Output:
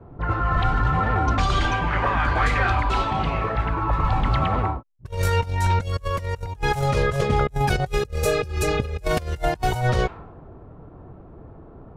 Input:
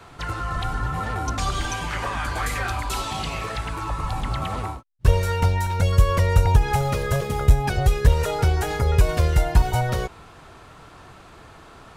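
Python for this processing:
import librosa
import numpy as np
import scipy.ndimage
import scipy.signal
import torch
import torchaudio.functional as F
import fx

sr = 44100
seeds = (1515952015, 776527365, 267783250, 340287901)

y = fx.env_lowpass(x, sr, base_hz=400.0, full_db=-16.5)
y = fx.spec_repair(y, sr, seeds[0], start_s=8.02, length_s=0.99, low_hz=630.0, high_hz=3900.0, source='before')
y = fx.over_compress(y, sr, threshold_db=-24.0, ratio=-0.5)
y = y * 10.0 ** (2.5 / 20.0)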